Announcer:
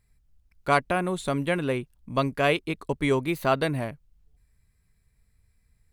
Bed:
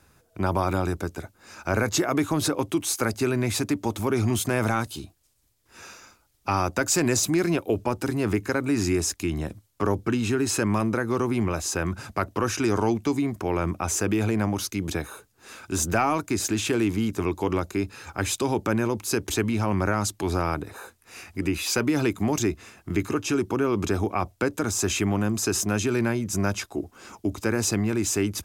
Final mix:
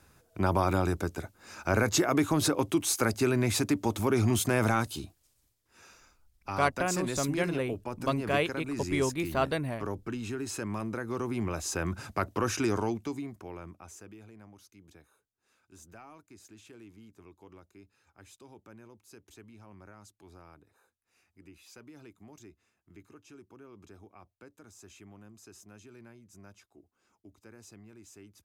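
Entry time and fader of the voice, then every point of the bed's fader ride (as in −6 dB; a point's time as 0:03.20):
5.90 s, −5.0 dB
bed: 0:05.40 −2 dB
0:05.71 −11.5 dB
0:10.69 −11.5 dB
0:11.99 −4 dB
0:12.62 −4 dB
0:14.27 −28 dB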